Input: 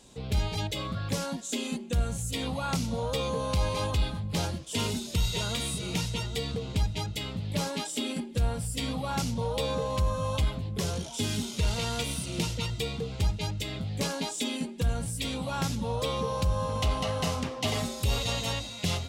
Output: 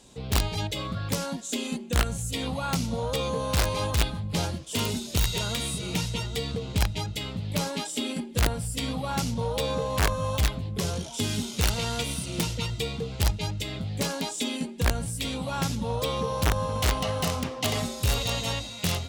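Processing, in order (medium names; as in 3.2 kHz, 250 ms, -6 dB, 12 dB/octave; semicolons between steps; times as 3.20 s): integer overflow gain 19 dB; Chebyshev shaper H 3 -24 dB, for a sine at -19 dBFS; trim +3 dB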